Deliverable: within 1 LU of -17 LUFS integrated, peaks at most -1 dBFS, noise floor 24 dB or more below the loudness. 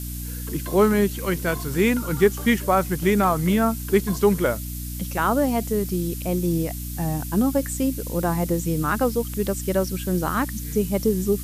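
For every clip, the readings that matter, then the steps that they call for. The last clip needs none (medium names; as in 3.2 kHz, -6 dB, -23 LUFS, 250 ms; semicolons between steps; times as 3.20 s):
hum 60 Hz; highest harmonic 300 Hz; hum level -29 dBFS; noise floor -31 dBFS; noise floor target -47 dBFS; loudness -23.0 LUFS; peak level -5.5 dBFS; loudness target -17.0 LUFS
-> hum notches 60/120/180/240/300 Hz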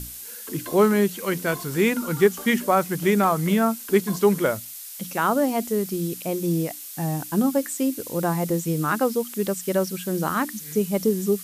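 hum not found; noise floor -38 dBFS; noise floor target -48 dBFS
-> noise print and reduce 10 dB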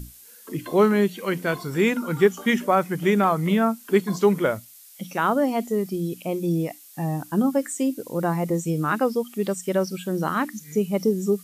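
noise floor -48 dBFS; loudness -23.5 LUFS; peak level -6.5 dBFS; loudness target -17.0 LUFS
-> trim +6.5 dB; peak limiter -1 dBFS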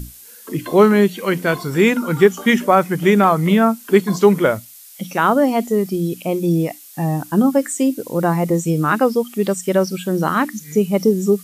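loudness -17.0 LUFS; peak level -1.0 dBFS; noise floor -42 dBFS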